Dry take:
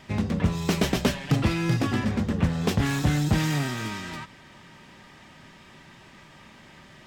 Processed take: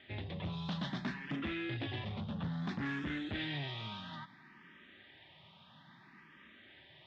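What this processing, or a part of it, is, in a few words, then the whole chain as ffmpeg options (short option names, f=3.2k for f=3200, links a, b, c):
barber-pole phaser into a guitar amplifier: -filter_complex "[0:a]asplit=2[a][b];[b]afreqshift=0.6[c];[a][c]amix=inputs=2:normalize=1,asoftclip=type=tanh:threshold=-24.5dB,highpass=96,equalizer=f=480:t=q:w=4:g=-7,equalizer=f=1.8k:t=q:w=4:g=4,equalizer=f=3.5k:t=q:w=4:g=9,lowpass=f=3.9k:w=0.5412,lowpass=f=3.9k:w=1.3066,volume=-7.5dB"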